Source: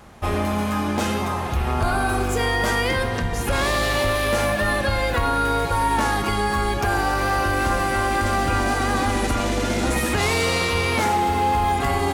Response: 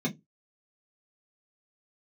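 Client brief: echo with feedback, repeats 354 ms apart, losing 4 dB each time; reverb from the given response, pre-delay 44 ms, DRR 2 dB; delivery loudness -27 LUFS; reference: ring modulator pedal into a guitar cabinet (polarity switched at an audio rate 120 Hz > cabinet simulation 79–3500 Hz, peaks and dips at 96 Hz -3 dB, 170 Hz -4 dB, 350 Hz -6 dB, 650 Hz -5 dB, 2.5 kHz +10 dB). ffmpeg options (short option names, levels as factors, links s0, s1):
-filter_complex "[0:a]aecho=1:1:354|708|1062|1416|1770|2124|2478|2832|3186:0.631|0.398|0.25|0.158|0.0994|0.0626|0.0394|0.0249|0.0157,asplit=2[s0][s1];[1:a]atrim=start_sample=2205,adelay=44[s2];[s1][s2]afir=irnorm=-1:irlink=0,volume=0.398[s3];[s0][s3]amix=inputs=2:normalize=0,aeval=exprs='val(0)*sgn(sin(2*PI*120*n/s))':c=same,highpass=79,equalizer=f=96:t=q:w=4:g=-3,equalizer=f=170:t=q:w=4:g=-4,equalizer=f=350:t=q:w=4:g=-6,equalizer=f=650:t=q:w=4:g=-5,equalizer=f=2500:t=q:w=4:g=10,lowpass=f=3500:w=0.5412,lowpass=f=3500:w=1.3066,volume=0.237"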